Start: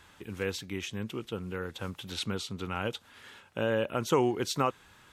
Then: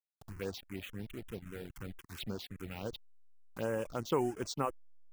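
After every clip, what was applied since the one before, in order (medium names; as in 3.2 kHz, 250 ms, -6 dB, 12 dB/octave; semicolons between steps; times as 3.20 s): send-on-delta sampling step -35 dBFS; touch-sensitive phaser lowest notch 290 Hz, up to 4.1 kHz, full sweep at -26 dBFS; reverb removal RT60 0.51 s; trim -5 dB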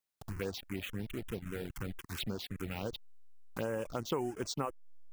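compression 2.5:1, threshold -42 dBFS, peak gain reduction 11 dB; trim +6.5 dB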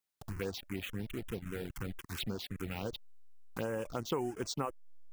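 band-stop 590 Hz, Q 18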